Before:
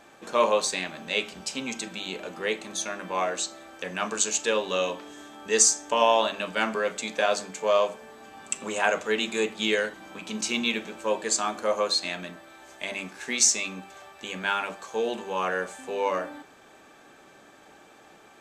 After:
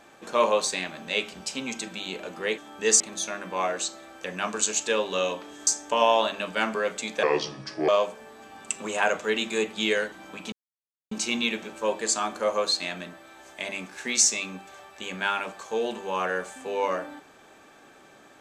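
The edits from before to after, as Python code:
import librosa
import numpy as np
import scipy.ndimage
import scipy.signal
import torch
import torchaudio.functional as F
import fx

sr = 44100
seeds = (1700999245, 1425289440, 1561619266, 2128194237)

y = fx.edit(x, sr, fx.move(start_s=5.25, length_s=0.42, to_s=2.58),
    fx.speed_span(start_s=7.23, length_s=0.47, speed=0.72),
    fx.insert_silence(at_s=10.34, length_s=0.59), tone=tone)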